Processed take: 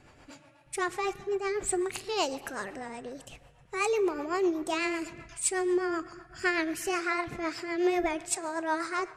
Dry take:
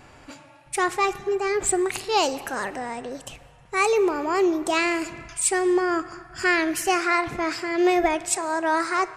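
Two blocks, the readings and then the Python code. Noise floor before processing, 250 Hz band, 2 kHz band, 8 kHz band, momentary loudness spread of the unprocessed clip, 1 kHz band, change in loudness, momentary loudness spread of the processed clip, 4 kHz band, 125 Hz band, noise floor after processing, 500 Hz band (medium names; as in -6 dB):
-51 dBFS, -6.5 dB, -7.5 dB, -7.0 dB, 11 LU, -9.0 dB, -7.5 dB, 12 LU, -7.5 dB, -6.0 dB, -59 dBFS, -7.0 dB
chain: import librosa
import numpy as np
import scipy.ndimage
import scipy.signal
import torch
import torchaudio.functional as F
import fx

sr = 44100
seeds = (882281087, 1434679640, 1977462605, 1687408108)

y = fx.rotary(x, sr, hz=8.0)
y = F.gain(torch.from_numpy(y), -5.0).numpy()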